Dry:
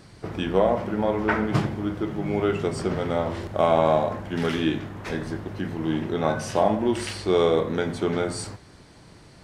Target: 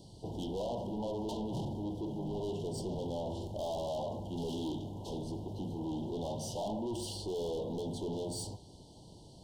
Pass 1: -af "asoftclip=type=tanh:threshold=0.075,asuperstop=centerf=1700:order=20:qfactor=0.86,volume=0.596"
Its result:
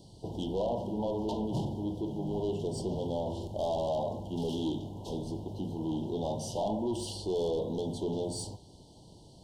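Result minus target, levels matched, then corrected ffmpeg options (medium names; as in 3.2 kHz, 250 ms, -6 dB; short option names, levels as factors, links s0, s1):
saturation: distortion -4 dB
-af "asoftclip=type=tanh:threshold=0.0335,asuperstop=centerf=1700:order=20:qfactor=0.86,volume=0.596"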